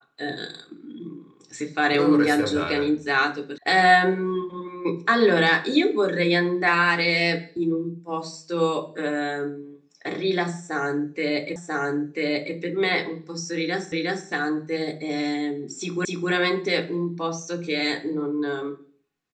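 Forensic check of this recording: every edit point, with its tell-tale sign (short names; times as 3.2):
3.58 sound cut off
11.56 repeat of the last 0.99 s
13.92 repeat of the last 0.36 s
16.05 repeat of the last 0.26 s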